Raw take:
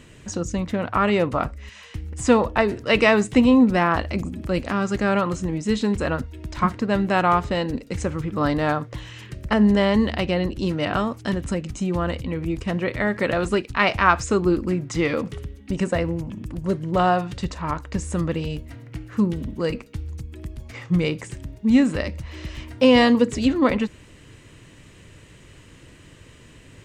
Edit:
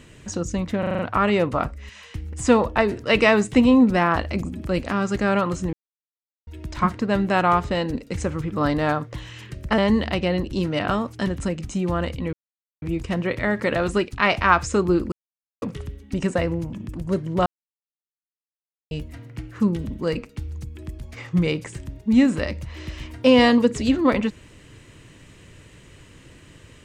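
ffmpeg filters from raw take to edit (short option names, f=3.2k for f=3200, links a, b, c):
-filter_complex "[0:a]asplit=14[a][b][c][d][e][f][g][h][i][j][k][l][m][n];[a]atrim=end=0.832[o];[b]atrim=start=0.788:end=0.832[p];[c]atrim=start=0.788:end=0.832[q];[d]atrim=start=0.788:end=0.832[r];[e]atrim=start=0.788:end=0.832[s];[f]atrim=start=0.788:end=5.53,asetpts=PTS-STARTPTS,afade=t=out:st=4.738:d=0.004:c=hsin[t];[g]atrim=start=5.53:end=6.27,asetpts=PTS-STARTPTS,volume=0[u];[h]atrim=start=6.27:end=9.582,asetpts=PTS-STARTPTS,afade=t=in:d=0.004:c=hsin[v];[i]atrim=start=9.838:end=12.39,asetpts=PTS-STARTPTS,afade=t=out:st=2.548:d=0.004:c=hsin,apad=pad_dur=0.49[w];[j]atrim=start=12.39:end=14.69,asetpts=PTS-STARTPTS,afade=t=in:d=0.004:c=hsin,afade=t=out:st=2.296:d=0.004:c=hsin[x];[k]atrim=start=14.69:end=15.19,asetpts=PTS-STARTPTS,volume=0[y];[l]atrim=start=15.19:end=17.03,asetpts=PTS-STARTPTS,afade=t=in:d=0.004:c=hsin,afade=t=out:st=1.836:d=0.004:c=hsin[z];[m]atrim=start=17.03:end=18.48,asetpts=PTS-STARTPTS,volume=0[aa];[n]atrim=start=18.48,asetpts=PTS-STARTPTS,afade=t=in:d=0.004:c=hsin[ab];[o][p]acrossfade=d=0.004:c1=hsin:c2=hsin[ac];[ac][q]acrossfade=d=0.004:c1=hsin:c2=hsin[ad];[ad][r]acrossfade=d=0.004:c1=hsin:c2=hsin[ae];[ae][s]acrossfade=d=0.004:c1=hsin:c2=hsin[af];[t][u][v]concat=n=3:v=0:a=1[ag];[af][ag]acrossfade=d=0.004:c1=hsin:c2=hsin[ah];[w][x][y][z][aa][ab]concat=n=6:v=0:a=1[ai];[ah][ai]acrossfade=d=0.004:c1=hsin:c2=hsin"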